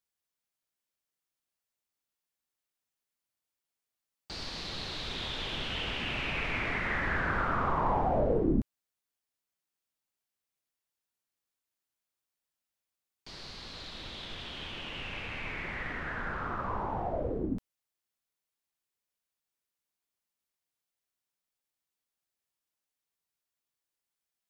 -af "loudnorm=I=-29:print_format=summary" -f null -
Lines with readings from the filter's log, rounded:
Input Integrated:    -33.5 LUFS
Input True Peak:     -15.8 dBTP
Input LRA:            12.2 LU
Input Threshold:     -43.8 LUFS